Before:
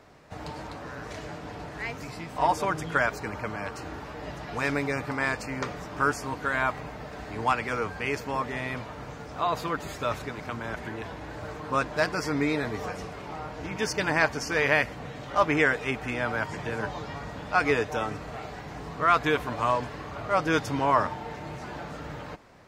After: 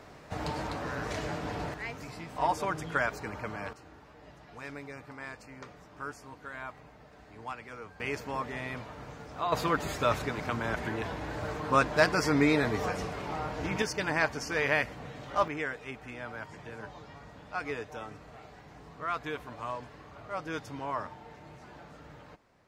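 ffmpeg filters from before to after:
-af "asetnsamples=n=441:p=0,asendcmd='1.74 volume volume -4.5dB;3.73 volume volume -15dB;8 volume volume -5dB;9.52 volume volume 2dB;13.82 volume volume -4.5dB;15.48 volume volume -12dB',volume=3.5dB"

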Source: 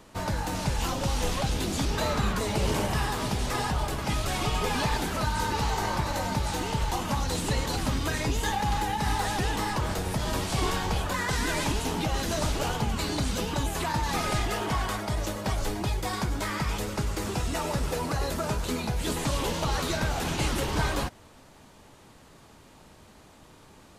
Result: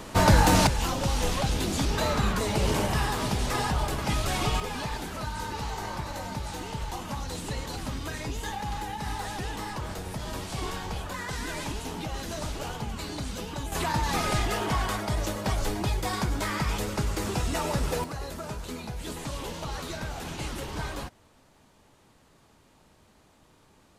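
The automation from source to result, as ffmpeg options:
-af "asetnsamples=n=441:p=0,asendcmd='0.67 volume volume 1dB;4.6 volume volume -6dB;13.72 volume volume 1dB;18.04 volume volume -7dB',volume=11.5dB"

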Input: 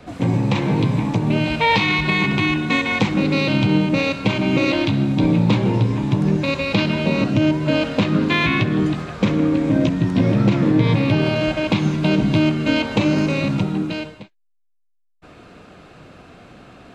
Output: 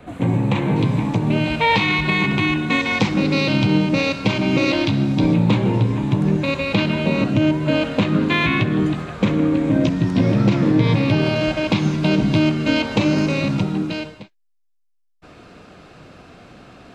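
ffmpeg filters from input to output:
-af "asetnsamples=n=441:p=0,asendcmd='0.76 equalizer g -3.5;2.8 equalizer g 5;5.34 equalizer g -5;9.84 equalizer g 3.5',equalizer=f=5.2k:t=o:w=0.54:g=-14"

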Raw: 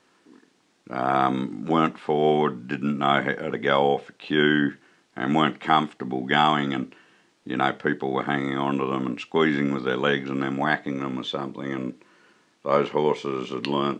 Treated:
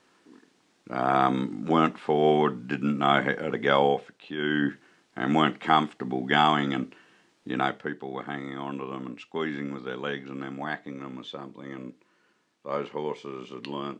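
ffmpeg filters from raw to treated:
-af "volume=10dB,afade=t=out:st=3.83:d=0.54:silence=0.266073,afade=t=in:st=4.37:d=0.33:silence=0.281838,afade=t=out:st=7.5:d=0.41:silence=0.398107"

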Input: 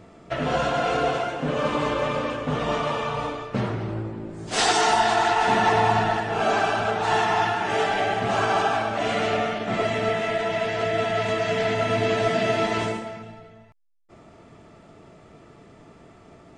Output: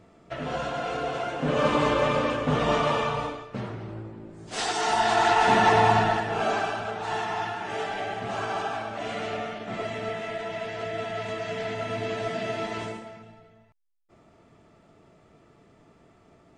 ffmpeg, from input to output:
-af "volume=10dB,afade=t=in:st=1.09:d=0.53:silence=0.375837,afade=t=out:st=2.99:d=0.47:silence=0.334965,afade=t=in:st=4.75:d=0.57:silence=0.375837,afade=t=out:st=5.91:d=0.92:silence=0.375837"

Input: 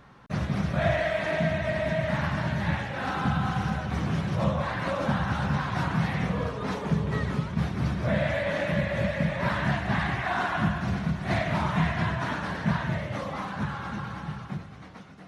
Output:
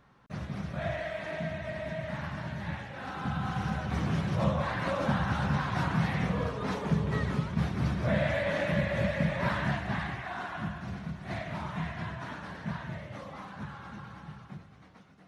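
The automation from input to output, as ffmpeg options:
-af "volume=-2dB,afade=t=in:st=3.13:d=0.82:silence=0.446684,afade=t=out:st=9.38:d=0.91:silence=0.398107"

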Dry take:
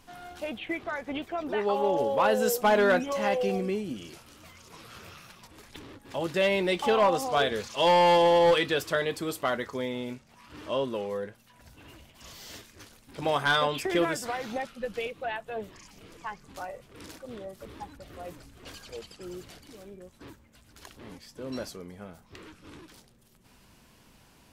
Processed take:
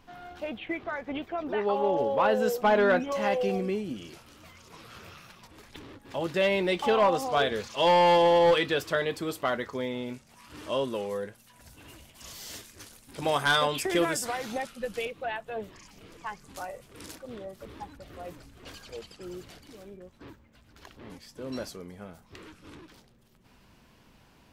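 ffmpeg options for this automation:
-af "asetnsamples=n=441:p=0,asendcmd='3.12 equalizer g -4;10.14 equalizer g 7.5;15.05 equalizer g -2;16.26 equalizer g 6;17.15 equalizer g -3;19.97 equalizer g -11;21.1 equalizer g -0.5;22.75 equalizer g -8.5',equalizer=f=10k:t=o:w=1.5:g=-13"

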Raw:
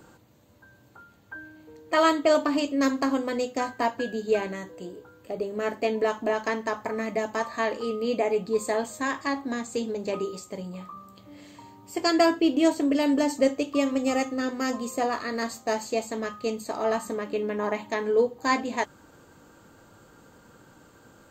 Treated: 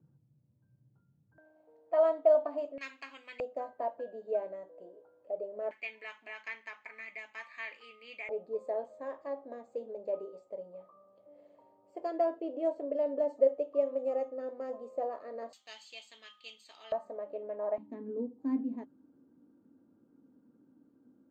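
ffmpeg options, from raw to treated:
-af "asetnsamples=n=441:p=0,asendcmd='1.38 bandpass f 660;2.78 bandpass f 2500;3.4 bandpass f 600;5.71 bandpass f 2300;8.29 bandpass f 570;15.53 bandpass f 3200;16.92 bandpass f 620;17.78 bandpass f 260',bandpass=f=140:t=q:w=6:csg=0"

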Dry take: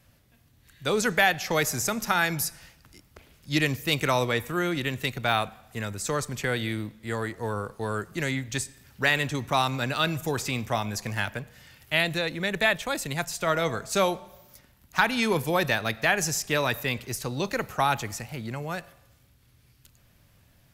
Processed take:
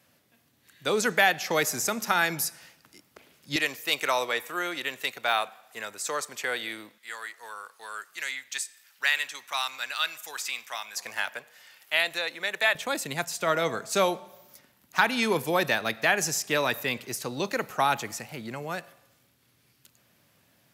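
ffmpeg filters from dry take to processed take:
-af "asetnsamples=n=441:p=0,asendcmd='3.56 highpass f 550;6.98 highpass f 1400;10.97 highpass f 650;12.75 highpass f 200',highpass=220"

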